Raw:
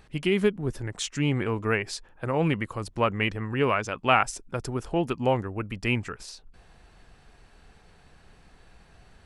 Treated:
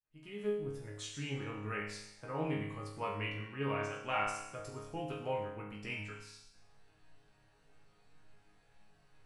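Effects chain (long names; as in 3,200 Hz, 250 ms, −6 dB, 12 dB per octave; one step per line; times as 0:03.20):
fade in at the beginning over 0.80 s
resonators tuned to a chord G#2 sus4, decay 0.85 s
level +7 dB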